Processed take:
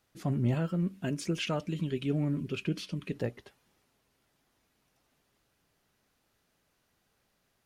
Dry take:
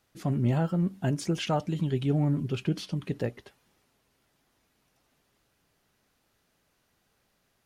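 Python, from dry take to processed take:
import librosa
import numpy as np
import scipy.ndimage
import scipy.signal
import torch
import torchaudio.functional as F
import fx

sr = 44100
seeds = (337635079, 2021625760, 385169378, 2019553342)

y = fx.graphic_eq_31(x, sr, hz=(125, 800, 2500), db=(-9, -12, 6), at=(0.54, 3.16))
y = y * librosa.db_to_amplitude(-2.5)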